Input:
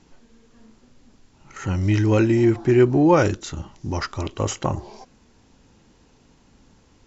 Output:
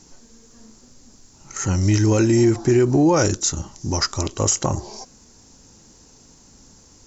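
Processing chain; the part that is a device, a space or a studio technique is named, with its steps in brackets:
over-bright horn tweeter (high shelf with overshoot 4,300 Hz +11.5 dB, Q 1.5; brickwall limiter −11.5 dBFS, peak gain reduction 7.5 dB)
level +3 dB

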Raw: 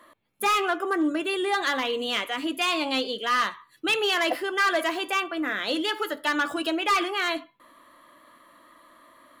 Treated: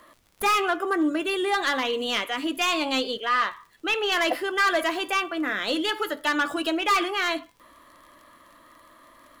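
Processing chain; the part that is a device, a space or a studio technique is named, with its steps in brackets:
0:03.17–0:04.12: bass and treble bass −14 dB, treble −10 dB
record under a worn stylus (stylus tracing distortion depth 0.023 ms; surface crackle 57 per second −44 dBFS; pink noise bed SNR 40 dB)
level +1 dB

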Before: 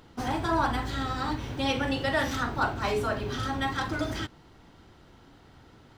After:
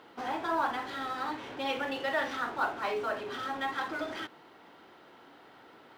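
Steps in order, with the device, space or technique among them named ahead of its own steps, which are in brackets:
phone line with mismatched companding (band-pass filter 390–3,200 Hz; mu-law and A-law mismatch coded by mu)
level −3.5 dB

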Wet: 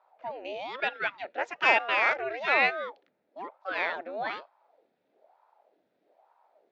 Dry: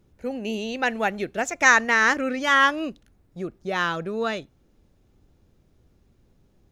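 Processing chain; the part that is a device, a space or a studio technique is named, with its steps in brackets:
0:00.80–0:01.25: Butterworth high-pass 410 Hz
voice changer toy (ring modulator whose carrier an LFO sweeps 550 Hz, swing 75%, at 1.1 Hz; loudspeaker in its box 590–3,700 Hz, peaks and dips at 630 Hz +4 dB, 1,100 Hz −8 dB, 3,000 Hz −6 dB)

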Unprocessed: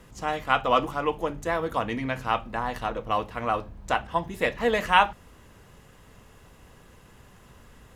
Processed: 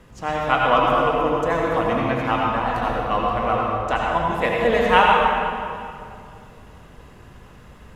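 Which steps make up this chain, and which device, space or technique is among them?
swimming-pool hall (convolution reverb RT60 2.5 s, pre-delay 69 ms, DRR −2.5 dB; high-shelf EQ 5,100 Hz −8 dB)
level +2.5 dB

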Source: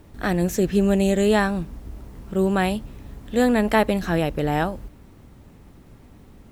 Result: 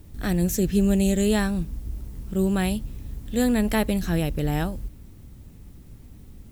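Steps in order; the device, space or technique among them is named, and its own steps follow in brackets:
smiley-face EQ (low-shelf EQ 120 Hz +6 dB; parametric band 920 Hz −9 dB 2.8 octaves; high-shelf EQ 7,600 Hz +7 dB)

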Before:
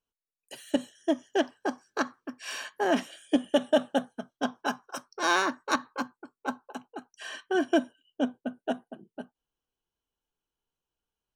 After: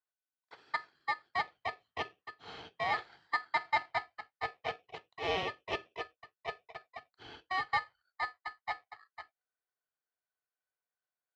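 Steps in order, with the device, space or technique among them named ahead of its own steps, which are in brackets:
ring modulator pedal into a guitar cabinet (ring modulator with a square carrier 1,500 Hz; loudspeaker in its box 95–3,800 Hz, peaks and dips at 220 Hz −9 dB, 460 Hz +6 dB, 740 Hz +9 dB, 2,700 Hz −4 dB)
level −8.5 dB

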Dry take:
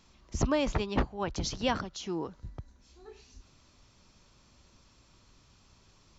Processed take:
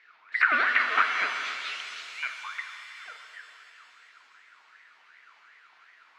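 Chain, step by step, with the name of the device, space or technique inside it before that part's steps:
voice changer toy (ring modulator whose carrier an LFO sweeps 1,400 Hz, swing 40%, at 2.7 Hz; loudspeaker in its box 520–3,900 Hz, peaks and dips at 550 Hz −8 dB, 830 Hz −10 dB, 1,400 Hz +7 dB, 2,300 Hz +8 dB, 3,400 Hz −4 dB)
0:01.38–0:02.23: Butterworth high-pass 2,600 Hz 48 dB per octave
reverb with rising layers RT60 2.9 s, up +7 semitones, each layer −8 dB, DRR 4 dB
level +4 dB

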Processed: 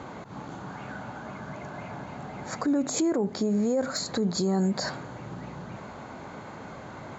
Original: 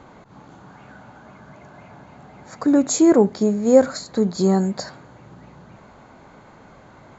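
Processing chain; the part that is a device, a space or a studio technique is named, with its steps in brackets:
podcast mastering chain (high-pass filter 67 Hz; de-essing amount 55%; downward compressor 3 to 1, threshold −24 dBFS, peak gain reduction 12.5 dB; brickwall limiter −24.5 dBFS, peak gain reduction 10.5 dB; level +6 dB; MP3 96 kbit/s 44,100 Hz)

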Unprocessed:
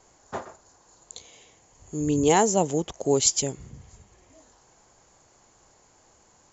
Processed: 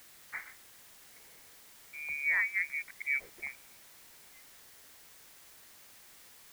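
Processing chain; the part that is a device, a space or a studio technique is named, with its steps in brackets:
high-pass filter 300 Hz
0:02.21–0:03.08: parametric band 2,300 Hz −11.5 dB 1.1 octaves
scrambled radio voice (band-pass filter 370–2,700 Hz; voice inversion scrambler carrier 2,700 Hz; white noise bed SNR 16 dB)
level −7 dB

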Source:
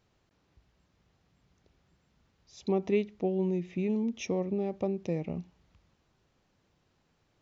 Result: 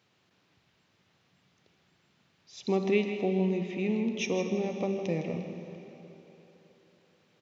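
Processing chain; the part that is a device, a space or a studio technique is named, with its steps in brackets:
PA in a hall (high-pass filter 110 Hz 24 dB per octave; parametric band 2,900 Hz +7.5 dB 2 octaves; single-tap delay 159 ms −10 dB; convolution reverb RT60 3.8 s, pre-delay 37 ms, DRR 6.5 dB)

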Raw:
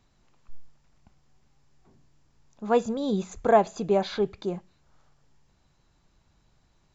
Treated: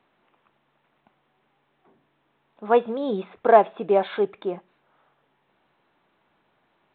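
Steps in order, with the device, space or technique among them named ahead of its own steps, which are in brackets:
telephone (band-pass filter 330–3,100 Hz; level +5 dB; mu-law 64 kbit/s 8,000 Hz)

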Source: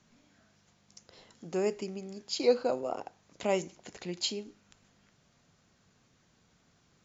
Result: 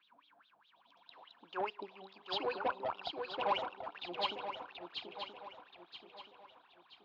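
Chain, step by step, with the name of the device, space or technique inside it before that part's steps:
wah-wah guitar rig (LFO wah 4.8 Hz 670–3,800 Hz, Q 13; tube saturation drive 45 dB, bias 0.25; loudspeaker in its box 99–3,900 Hz, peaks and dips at 300 Hz +6 dB, 670 Hz −6 dB, 1,000 Hz +7 dB, 2,000 Hz −10 dB)
feedback echo with a long and a short gap by turns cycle 977 ms, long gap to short 3 to 1, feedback 38%, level −5 dB
level +17 dB

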